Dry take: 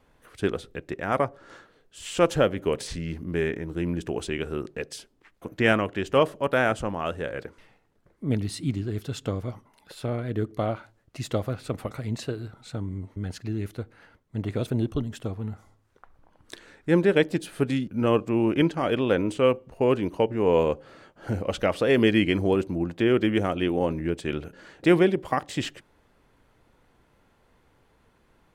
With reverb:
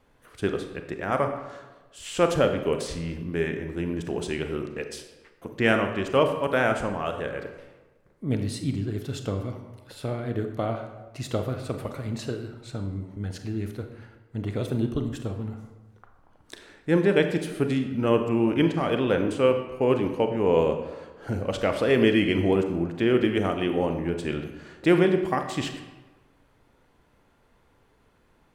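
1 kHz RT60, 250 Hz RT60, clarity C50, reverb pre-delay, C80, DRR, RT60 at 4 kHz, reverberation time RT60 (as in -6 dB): 1.2 s, 1.2 s, 7.5 dB, 28 ms, 9.5 dB, 6.0 dB, 0.75 s, 1.2 s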